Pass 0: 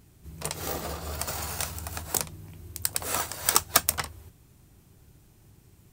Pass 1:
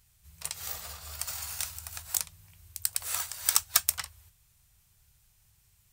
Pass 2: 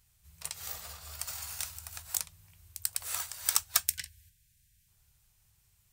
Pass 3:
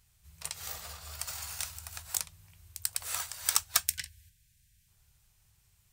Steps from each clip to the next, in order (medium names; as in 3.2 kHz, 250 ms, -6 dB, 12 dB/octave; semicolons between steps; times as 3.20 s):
amplifier tone stack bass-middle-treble 10-0-10; trim -1 dB
time-frequency box 3.87–4.88 s, 270–1500 Hz -22 dB; trim -3 dB
treble shelf 10 kHz -4.5 dB; trim +2 dB